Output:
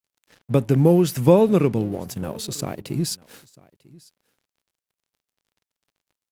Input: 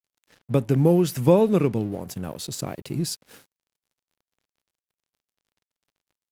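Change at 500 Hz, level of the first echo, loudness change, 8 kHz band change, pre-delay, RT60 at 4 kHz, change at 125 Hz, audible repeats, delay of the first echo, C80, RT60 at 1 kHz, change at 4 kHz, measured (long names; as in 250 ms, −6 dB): +2.5 dB, −24.0 dB, +2.5 dB, +2.5 dB, no reverb audible, no reverb audible, +2.5 dB, 1, 946 ms, no reverb audible, no reverb audible, +2.5 dB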